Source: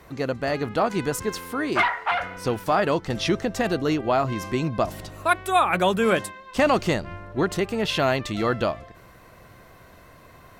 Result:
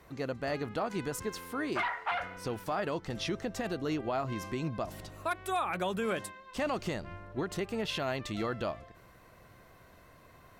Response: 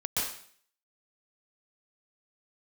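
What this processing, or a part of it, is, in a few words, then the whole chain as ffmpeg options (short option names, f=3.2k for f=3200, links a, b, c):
clipper into limiter: -af "asoftclip=type=hard:threshold=-10dB,alimiter=limit=-15.5dB:level=0:latency=1:release=115,volume=-8dB"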